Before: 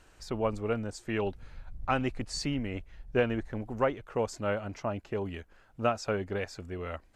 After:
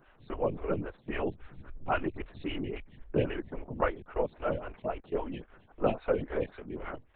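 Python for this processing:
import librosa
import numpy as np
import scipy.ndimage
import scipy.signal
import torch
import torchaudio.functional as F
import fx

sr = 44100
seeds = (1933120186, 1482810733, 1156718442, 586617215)

y = fx.comb(x, sr, ms=4.0, depth=0.93, at=(5.02, 6.72))
y = fx.lpc_vocoder(y, sr, seeds[0], excitation='whisper', order=8)
y = fx.stagger_phaser(y, sr, hz=3.7)
y = y * librosa.db_to_amplitude(1.5)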